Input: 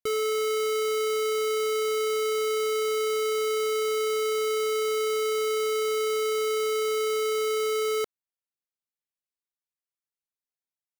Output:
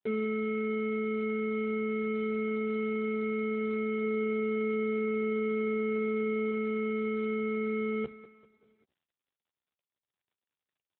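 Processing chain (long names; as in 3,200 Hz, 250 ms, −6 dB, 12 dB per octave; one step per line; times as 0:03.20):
sub-octave generator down 1 octave, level +1 dB
Butterworth band-reject 1,200 Hz, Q 3.7
0:04.02–0:06.50: parametric band 410 Hz +2.5 dB 0.42 octaves
mains-hum notches 60/120/180/240/300/360/420 Hz
double-tracking delay 13 ms −2.5 dB
repeating echo 195 ms, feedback 48%, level −16 dB
level −3 dB
AMR narrowband 7.95 kbit/s 8,000 Hz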